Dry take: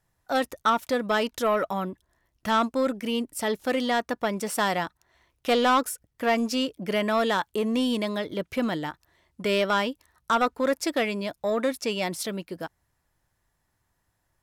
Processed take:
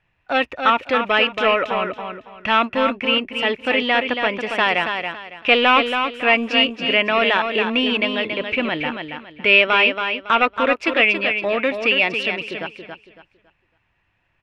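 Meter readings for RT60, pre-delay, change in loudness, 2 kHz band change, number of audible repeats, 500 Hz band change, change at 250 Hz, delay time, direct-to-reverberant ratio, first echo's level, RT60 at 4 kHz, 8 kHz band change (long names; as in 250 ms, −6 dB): no reverb audible, no reverb audible, +8.5 dB, +13.5 dB, 3, +5.0 dB, +2.5 dB, 278 ms, no reverb audible, −6.5 dB, no reverb audible, below −10 dB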